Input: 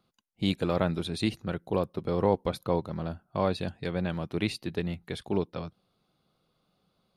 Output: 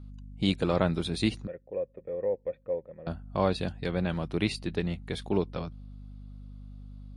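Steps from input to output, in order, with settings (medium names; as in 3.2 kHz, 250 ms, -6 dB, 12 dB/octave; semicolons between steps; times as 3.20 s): hum 50 Hz, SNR 14 dB; 1.47–3.07 s: cascade formant filter e; trim +1.5 dB; MP3 48 kbps 24 kHz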